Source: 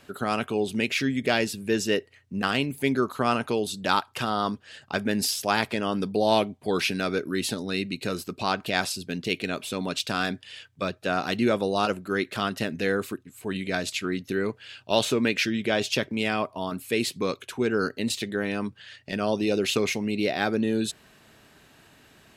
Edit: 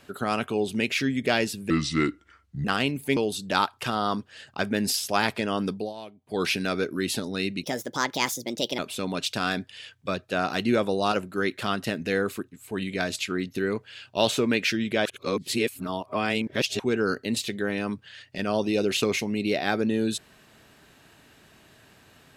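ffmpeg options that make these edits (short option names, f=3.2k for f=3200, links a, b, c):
-filter_complex "[0:a]asplit=10[a][b][c][d][e][f][g][h][i][j];[a]atrim=end=1.704[k];[b]atrim=start=1.7:end=2.39,asetpts=PTS-STARTPTS,asetrate=32193,aresample=44100[l];[c]atrim=start=2.386:end=2.912[m];[d]atrim=start=3.508:end=6.28,asetpts=PTS-STARTPTS,afade=t=out:st=2.522:d=0.25:silence=0.112202[n];[e]atrim=start=6.28:end=6.53,asetpts=PTS-STARTPTS,volume=-19dB[o];[f]atrim=start=6.53:end=7.984,asetpts=PTS-STARTPTS,afade=t=in:d=0.25:silence=0.112202[p];[g]atrim=start=7.98:end=9.52,asetpts=PTS-STARTPTS,asetrate=59094,aresample=44100,atrim=end_sample=50682,asetpts=PTS-STARTPTS[q];[h]atrim=start=9.516:end=15.792[r];[i]atrim=start=15.788:end=17.532,asetpts=PTS-STARTPTS,areverse[s];[j]atrim=start=17.528[t];[k][l]acrossfade=d=0.004:c1=hsin:c2=hsin[u];[u][m]acrossfade=d=0.004:c1=hsin:c2=hsin[v];[n][o][p]concat=n=3:v=0:a=1[w];[v][w]acrossfade=d=0.004:c1=hsin:c2=hsin[x];[x][q]acrossfade=d=0.004:c1=hsin:c2=hsin[y];[y][r]acrossfade=d=0.004:c1=hsin:c2=hsin[z];[z][s]acrossfade=d=0.004:c1=hsin:c2=hsin[aa];[aa][t]acrossfade=d=0.004:c1=hsin:c2=hsin"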